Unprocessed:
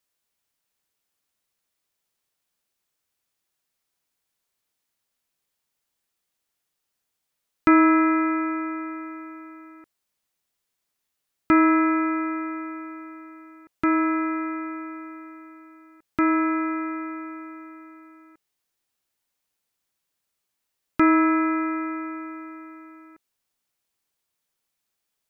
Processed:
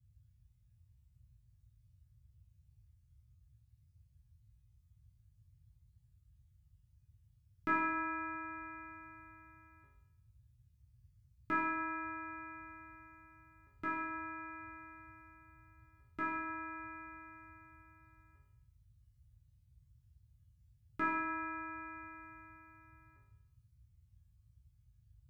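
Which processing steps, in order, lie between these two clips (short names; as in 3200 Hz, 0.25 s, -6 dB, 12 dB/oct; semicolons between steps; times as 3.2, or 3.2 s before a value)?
dynamic EQ 2100 Hz, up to -4 dB, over -40 dBFS, Q 4.1; resonator bank C#3 sus4, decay 0.82 s; band noise 43–120 Hz -73 dBFS; gain +7.5 dB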